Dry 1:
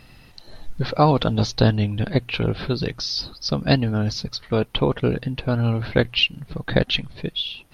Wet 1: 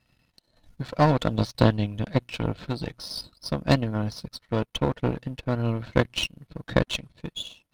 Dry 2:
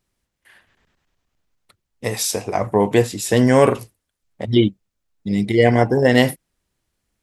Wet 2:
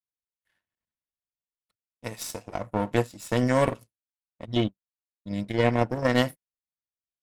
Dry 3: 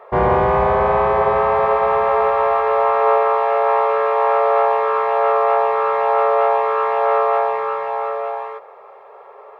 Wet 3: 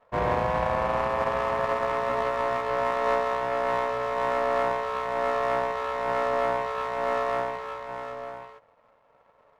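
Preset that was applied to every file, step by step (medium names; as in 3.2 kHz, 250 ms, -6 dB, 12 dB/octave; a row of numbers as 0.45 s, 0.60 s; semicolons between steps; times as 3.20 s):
partial rectifier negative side -7 dB; comb of notches 400 Hz; power-law waveshaper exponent 1.4; normalise loudness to -27 LUFS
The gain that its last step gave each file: +2.5 dB, -3.0 dB, -3.0 dB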